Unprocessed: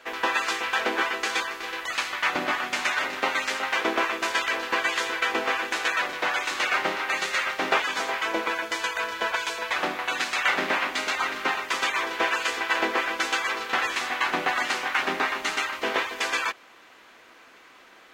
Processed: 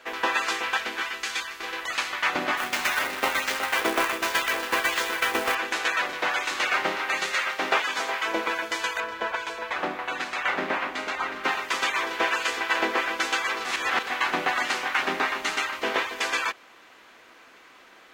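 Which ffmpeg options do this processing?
-filter_complex "[0:a]asettb=1/sr,asplit=3[a][b][c];[a]atrim=end=0.774[d];[b]atrim=start=0.77:end=1.6,asetpts=PTS-STARTPTS,afade=t=in:d=0.004:c=qsin,afade=t=out:st=0.826:d=0.004:c=qsin,equalizer=f=480:t=o:w=2.9:g=-11[e];[c]atrim=start=1.596[f];[d][e]acrossfade=d=0.004:c1=hsin:c2=qsin[g];[g][f]acrossfade=d=0.004:c1=qsin:c2=hsin,asettb=1/sr,asplit=3[h][i][j];[h]atrim=end=2.574[k];[i]atrim=start=2.57:end=5.55,asetpts=PTS-STARTPTS,afade=t=in:d=0.004:c=qsin,afade=t=out:st=2.976:d=0.004:c=qsin,acrusher=bits=2:mode=log:mix=0:aa=0.000001[l];[j]atrim=start=5.546[m];[k][l]acrossfade=d=0.004:c1=hsin:c2=qsin[n];[n][m]acrossfade=d=0.004:c1=qsin:c2=hsin,asettb=1/sr,asplit=3[o][p][q];[o]atrim=end=7.344[r];[p]atrim=start=7.34:end=8.28,asetpts=PTS-STARTPTS,afade=t=in:d=0.004:c=qsin,afade=t=out:st=0.936:d=0.004:c=qsin,lowshelf=f=220:g=-7[s];[q]atrim=start=8.276[t];[r][s]acrossfade=d=0.004:c1=hsin:c2=qsin[u];[u][t]acrossfade=d=0.004:c1=qsin:c2=hsin,asettb=1/sr,asplit=3[v][w][x];[v]atrim=end=9.004[y];[w]atrim=start=9:end=11.44,asetpts=PTS-STARTPTS,afade=t=in:d=0.004:c=qsin,afade=t=out:st=2.436:d=0.004:c=qsin,highshelf=f=2.7k:g=-10.5[z];[x]atrim=start=11.436[aa];[y][z]acrossfade=d=0.004:c1=hsin:c2=qsin[ab];[ab][aa]acrossfade=d=0.004:c1=qsin:c2=hsin,asplit=3[ac][ad][ae];[ac]atrim=end=13.652[af];[ad]atrim=start=13.648:end=14.072,asetpts=PTS-STARTPTS,areverse[ag];[ae]atrim=start=14.068[ah];[af][ag]acrossfade=d=0.004:c1=hsin:c2=hsin[ai];[ai][ah]acrossfade=d=0.004:c1=hsin:c2=hsin"

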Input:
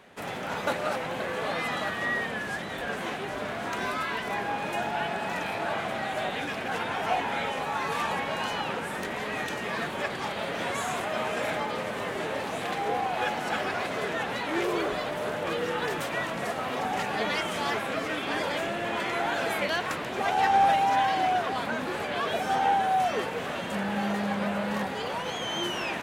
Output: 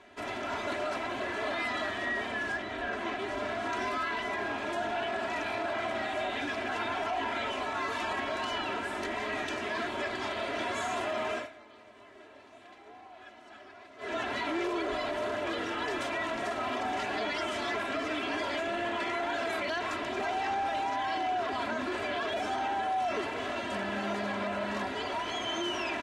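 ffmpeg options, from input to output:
-filter_complex "[0:a]asettb=1/sr,asplit=3[a][b][c];[a]atrim=end=2.524[d];[b]atrim=start=2.52:end=3.19,asetpts=PTS-STARTPTS,afade=t=in:d=0.004:c=qsin,afade=t=out:st=0.666:d=0.004:c=qsin,highshelf=f=6.3k:g=-10.5[e];[c]atrim=start=3.186[f];[d][e]acrossfade=d=0.004:c1=hsin:c2=qsin[g];[g][f]acrossfade=d=0.004:c1=qsin:c2=hsin,asplit=3[h][i][j];[h]atrim=end=11.49,asetpts=PTS-STARTPTS,afade=t=out:st=11.3:d=0.19:silence=0.1[k];[i]atrim=start=11.49:end=13.98,asetpts=PTS-STARTPTS,volume=-20dB[l];[j]atrim=start=13.98,asetpts=PTS-STARTPTS,afade=t=in:d=0.19:silence=0.1[m];[k][l][m]concat=n=3:v=0:a=1,lowpass=7.2k,aecho=1:1:3:0.97,alimiter=limit=-20.5dB:level=0:latency=1:release=14,volume=-4dB"

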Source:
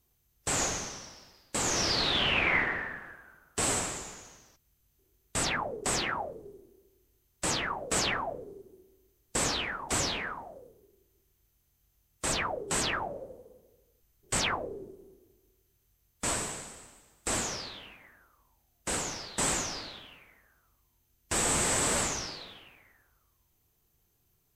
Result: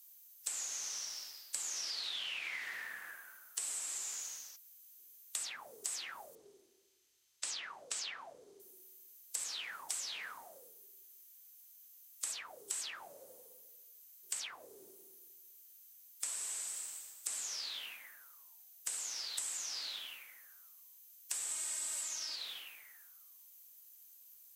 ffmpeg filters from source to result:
-filter_complex "[0:a]asettb=1/sr,asplit=3[a][b][c];[a]atrim=end=6.354[d];[b]atrim=start=6.35:end=8.6,asetpts=PTS-STARTPTS,afade=t=in:d=0.004:c=qsin,afade=t=out:st=2.246:d=0.004:c=qsin,lowpass=5.2k[e];[c]atrim=start=8.596[f];[d][e]acrossfade=d=0.004:c1=hsin:c2=qsin[g];[g][f]acrossfade=d=0.004:c1=qsin:c2=hsin,asettb=1/sr,asplit=3[h][i][j];[h]atrim=end=21.514[k];[i]atrim=start=21.51:end=22.36,asetpts=PTS-STARTPTS,afade=t=in:d=0.004:c=qsin,afade=t=out:st=0.846:d=0.004:c=qsin,aecho=1:1:3.2:0.87,atrim=end_sample=37485[l];[j]atrim=start=22.356[m];[k][l]acrossfade=d=0.004:c1=hsin:c2=qsin[n];[n][m]acrossfade=d=0.004:c1=qsin:c2=hsin,acrossover=split=250|3400[o][p][q];[o]acompressor=threshold=-52dB:ratio=4[r];[p]acompressor=threshold=-43dB:ratio=4[s];[q]acompressor=threshold=-43dB:ratio=4[t];[r][s][t]amix=inputs=3:normalize=0,aderivative,acompressor=threshold=-51dB:ratio=4,volume=12.5dB"

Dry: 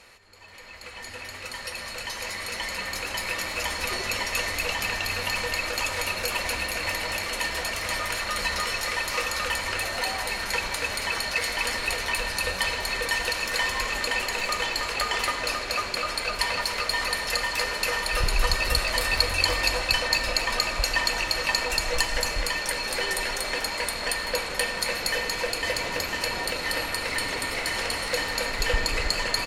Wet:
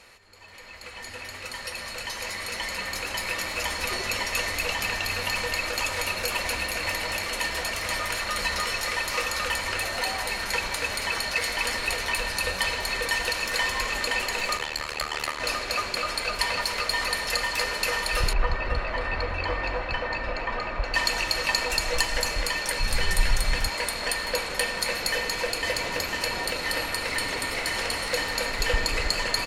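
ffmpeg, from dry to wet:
-filter_complex "[0:a]asplit=3[a][b][c];[a]afade=t=out:st=14.57:d=0.02[d];[b]tremolo=f=75:d=1,afade=t=in:st=14.57:d=0.02,afade=t=out:st=15.39:d=0.02[e];[c]afade=t=in:st=15.39:d=0.02[f];[d][e][f]amix=inputs=3:normalize=0,asettb=1/sr,asplit=3[g][h][i];[g]atrim=end=18.334[j];[h]atrim=start=18.33:end=20.94,asetpts=PTS-STARTPTS,afade=t=in:d=0.004:c=qsin,afade=t=out:st=2.606:d=0.004:c=qsin,lowpass=1.8k[k];[i]atrim=start=20.936[l];[j][k]acrossfade=d=0.004:c1=hsin:c2=qsin[m];[m][l]acrossfade=d=0.004:c1=qsin:c2=hsin,asplit=3[n][o][p];[n]afade=t=out:st=22.79:d=0.02[q];[o]asubboost=boost=10:cutoff=120,afade=t=in:st=22.79:d=0.02,afade=t=out:st=23.67:d=0.02[r];[p]afade=t=in:st=23.67:d=0.02[s];[q][r][s]amix=inputs=3:normalize=0"

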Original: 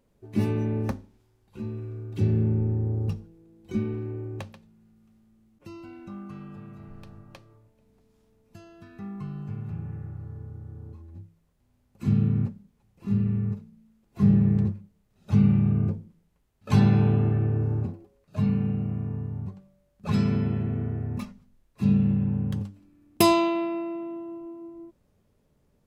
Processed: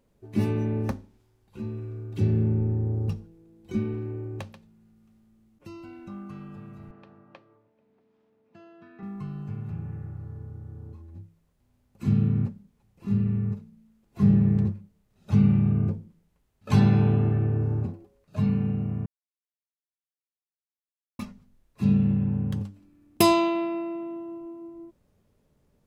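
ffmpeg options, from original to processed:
-filter_complex "[0:a]asettb=1/sr,asplit=3[a][b][c];[a]atrim=end=6.914[d];[b]atrim=start=6.91:end=9.03,asetpts=PTS-STARTPTS,afade=t=in:d=0.004:c=qsin,afade=t=out:st=2.116:d=0.004:c=qsin,highpass=230,lowpass=2.6k[e];[c]atrim=start=9.026[f];[d][e]acrossfade=d=0.004:c1=hsin:c2=qsin[g];[g][f]acrossfade=d=0.004:c1=qsin:c2=hsin,asplit=3[h][i][j];[h]atrim=end=19.06,asetpts=PTS-STARTPTS,afade=t=out:st=19.056:d=0.004:c=hsin[k];[i]atrim=start=19.06:end=21.19,asetpts=PTS-STARTPTS,volume=0[l];[j]atrim=start=21.19,asetpts=PTS-STARTPTS,afade=t=in:d=0.004:c=hsin[m];[k][l][m]concat=n=3:v=0:a=1"

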